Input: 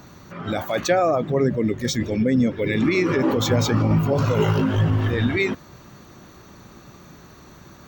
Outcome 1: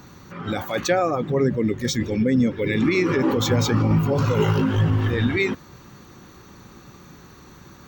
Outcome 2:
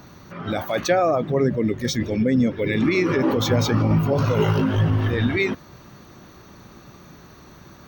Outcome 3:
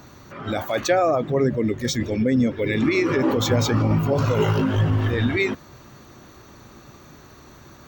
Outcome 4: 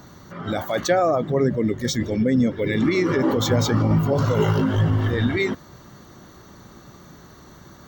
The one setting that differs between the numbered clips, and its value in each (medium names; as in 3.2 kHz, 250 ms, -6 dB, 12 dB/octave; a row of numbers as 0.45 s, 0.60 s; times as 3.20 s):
band-stop, frequency: 640 Hz, 7.3 kHz, 180 Hz, 2.5 kHz